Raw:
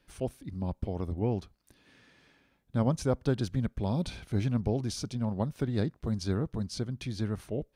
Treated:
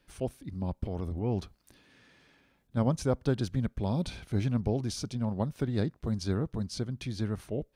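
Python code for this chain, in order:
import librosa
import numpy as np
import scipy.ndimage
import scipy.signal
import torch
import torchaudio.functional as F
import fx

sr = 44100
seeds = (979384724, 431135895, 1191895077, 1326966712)

y = fx.transient(x, sr, attack_db=-6, sustain_db=5, at=(0.85, 2.77))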